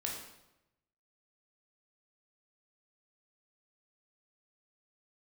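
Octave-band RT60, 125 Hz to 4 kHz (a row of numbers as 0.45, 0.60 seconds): 1.2, 1.0, 0.95, 0.90, 0.80, 0.75 seconds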